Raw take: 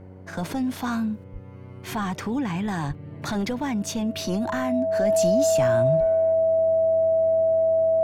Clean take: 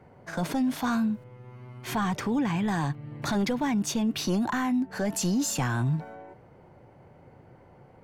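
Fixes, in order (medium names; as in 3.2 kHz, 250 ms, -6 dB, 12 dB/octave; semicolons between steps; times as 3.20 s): de-hum 93.5 Hz, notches 6; band-stop 650 Hz, Q 30; de-plosive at 1.32/2.87/5.99 s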